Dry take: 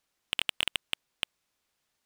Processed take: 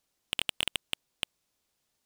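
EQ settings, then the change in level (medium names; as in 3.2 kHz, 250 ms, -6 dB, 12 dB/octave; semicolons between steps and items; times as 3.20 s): peaking EQ 1.7 kHz -6 dB 2.1 oct; +2.5 dB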